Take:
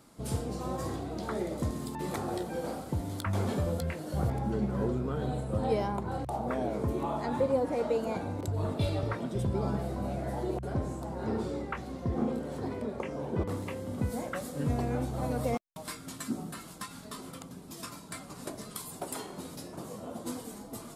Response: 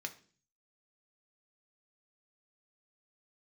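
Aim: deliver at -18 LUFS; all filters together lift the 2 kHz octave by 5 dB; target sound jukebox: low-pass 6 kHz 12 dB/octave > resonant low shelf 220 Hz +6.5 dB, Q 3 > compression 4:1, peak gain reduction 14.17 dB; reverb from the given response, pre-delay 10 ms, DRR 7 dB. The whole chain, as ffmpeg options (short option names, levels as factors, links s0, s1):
-filter_complex "[0:a]equalizer=f=2000:t=o:g=6.5,asplit=2[s0][s1];[1:a]atrim=start_sample=2205,adelay=10[s2];[s1][s2]afir=irnorm=-1:irlink=0,volume=0.473[s3];[s0][s3]amix=inputs=2:normalize=0,lowpass=6000,lowshelf=f=220:t=q:w=3:g=6.5,acompressor=threshold=0.0224:ratio=4,volume=8.91"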